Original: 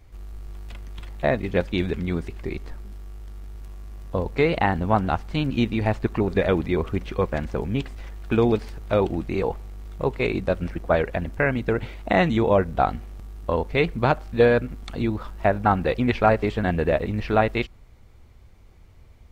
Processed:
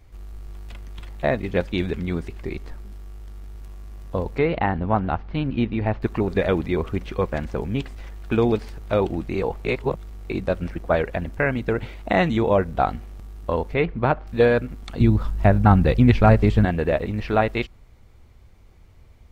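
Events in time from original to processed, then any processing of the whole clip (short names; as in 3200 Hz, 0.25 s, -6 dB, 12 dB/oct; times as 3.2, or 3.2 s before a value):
4.38–6.02 air absorption 270 m
9.65–10.3 reverse
13.74–14.27 LPF 2500 Hz
15–16.65 tone controls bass +12 dB, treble +3 dB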